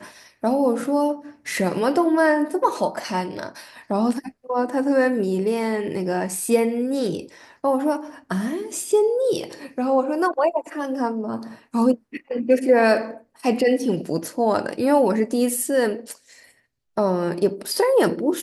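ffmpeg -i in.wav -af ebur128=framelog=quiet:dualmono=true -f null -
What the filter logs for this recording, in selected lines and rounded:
Integrated loudness:
  I:         -19.0 LUFS
  Threshold: -29.3 LUFS
Loudness range:
  LRA:         2.6 LU
  Threshold: -39.4 LUFS
  LRA low:   -20.6 LUFS
  LRA high:  -18.0 LUFS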